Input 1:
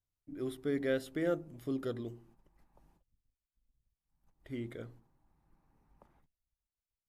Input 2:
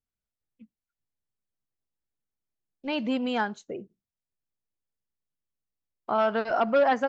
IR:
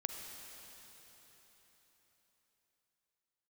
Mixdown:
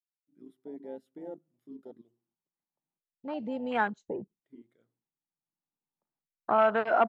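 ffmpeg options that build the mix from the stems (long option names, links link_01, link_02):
-filter_complex "[0:a]highpass=frequency=140:width=0.5412,highpass=frequency=140:width=1.3066,volume=-9dB,asplit=2[link_01][link_02];[1:a]acrossover=split=450|3000[link_03][link_04][link_05];[link_03]acompressor=threshold=-36dB:ratio=6[link_06];[link_06][link_04][link_05]amix=inputs=3:normalize=0,adelay=400,volume=1.5dB[link_07];[link_02]apad=whole_len=329891[link_08];[link_07][link_08]sidechaincompress=threshold=-59dB:ratio=8:attack=11:release=1460[link_09];[link_01][link_09]amix=inputs=2:normalize=0,afwtdn=0.0178"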